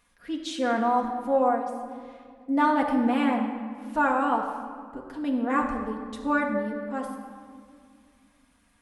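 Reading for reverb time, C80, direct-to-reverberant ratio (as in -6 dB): 2.1 s, 6.0 dB, -0.5 dB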